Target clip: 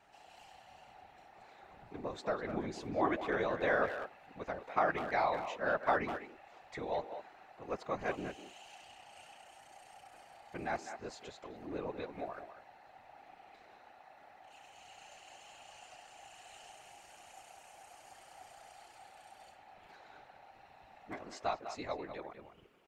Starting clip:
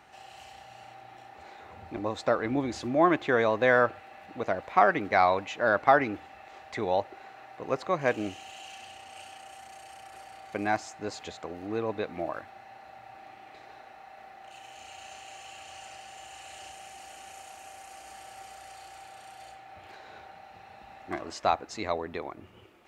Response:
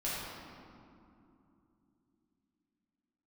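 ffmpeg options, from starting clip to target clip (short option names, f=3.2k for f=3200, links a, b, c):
-filter_complex "[0:a]afftfilt=real='hypot(re,im)*cos(2*PI*random(0))':imag='hypot(re,im)*sin(2*PI*random(1))':win_size=512:overlap=0.75,asplit=2[a][b];[b]adelay=200,highpass=300,lowpass=3.4k,asoftclip=type=hard:threshold=-23dB,volume=-9dB[c];[a][c]amix=inputs=2:normalize=0,volume=-3.5dB"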